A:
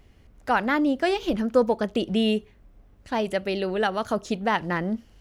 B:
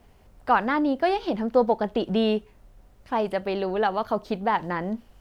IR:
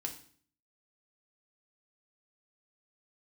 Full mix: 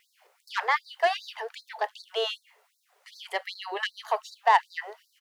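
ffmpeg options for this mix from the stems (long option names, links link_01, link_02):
-filter_complex "[0:a]bass=frequency=250:gain=-6,treble=frequency=4000:gain=-8,aeval=exprs='0.335*(cos(1*acos(clip(val(0)/0.335,-1,1)))-cos(1*PI/2))+0.0668*(cos(5*acos(clip(val(0)/0.335,-1,1)))-cos(5*PI/2))':channel_layout=same,volume=-7dB,asplit=2[link_01][link_02];[link_02]volume=-14.5dB[link_03];[1:a]adelay=1.2,volume=1.5dB[link_04];[2:a]atrim=start_sample=2205[link_05];[link_03][link_05]afir=irnorm=-1:irlink=0[link_06];[link_01][link_04][link_06]amix=inputs=3:normalize=0,afftfilt=real='re*gte(b*sr/1024,360*pow(3900/360,0.5+0.5*sin(2*PI*2.6*pts/sr)))':imag='im*gte(b*sr/1024,360*pow(3900/360,0.5+0.5*sin(2*PI*2.6*pts/sr)))':win_size=1024:overlap=0.75"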